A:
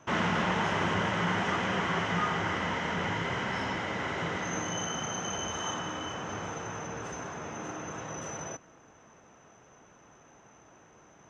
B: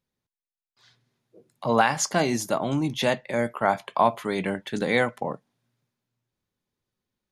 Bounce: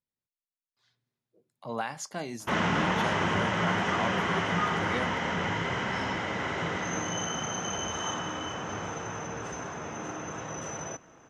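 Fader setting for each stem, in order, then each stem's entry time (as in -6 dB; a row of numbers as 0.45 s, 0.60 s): +1.5 dB, -13.0 dB; 2.40 s, 0.00 s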